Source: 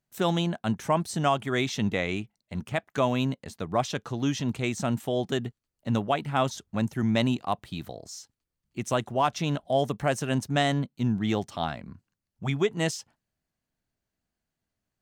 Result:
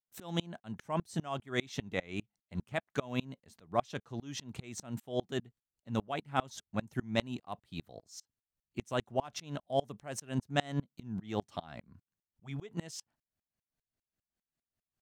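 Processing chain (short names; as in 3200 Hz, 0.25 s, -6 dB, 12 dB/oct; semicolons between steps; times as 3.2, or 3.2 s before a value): dB-ramp tremolo swelling 5 Hz, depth 30 dB; gain -1.5 dB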